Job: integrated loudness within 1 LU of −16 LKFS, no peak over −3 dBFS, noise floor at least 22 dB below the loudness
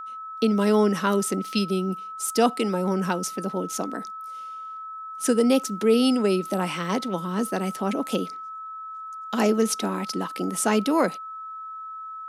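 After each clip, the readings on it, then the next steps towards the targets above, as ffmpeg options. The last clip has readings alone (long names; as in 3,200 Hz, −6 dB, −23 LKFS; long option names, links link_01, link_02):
interfering tone 1,300 Hz; level of the tone −34 dBFS; integrated loudness −24.5 LKFS; sample peak −8.0 dBFS; target loudness −16.0 LKFS
→ -af "bandreject=frequency=1300:width=30"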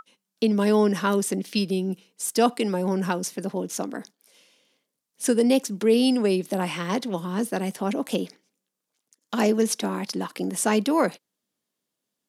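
interfering tone none found; integrated loudness −24.5 LKFS; sample peak −7.5 dBFS; target loudness −16.0 LKFS
→ -af "volume=8.5dB,alimiter=limit=-3dB:level=0:latency=1"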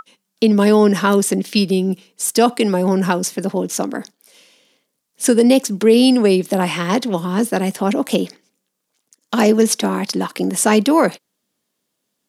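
integrated loudness −16.5 LKFS; sample peak −3.0 dBFS; background noise floor −75 dBFS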